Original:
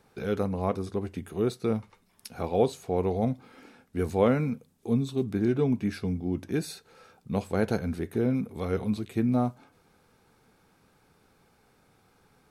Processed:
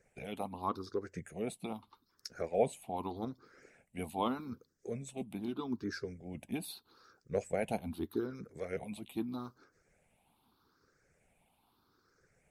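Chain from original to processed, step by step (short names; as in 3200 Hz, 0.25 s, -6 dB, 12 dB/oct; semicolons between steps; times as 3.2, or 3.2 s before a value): moving spectral ripple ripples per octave 0.53, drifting +0.81 Hz, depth 18 dB; harmonic-percussive split harmonic -16 dB; gain -6.5 dB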